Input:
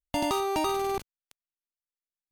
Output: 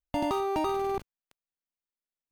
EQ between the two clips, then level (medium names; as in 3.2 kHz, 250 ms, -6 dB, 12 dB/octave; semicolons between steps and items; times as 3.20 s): peaking EQ 9.6 kHz -11.5 dB 3 oct; 0.0 dB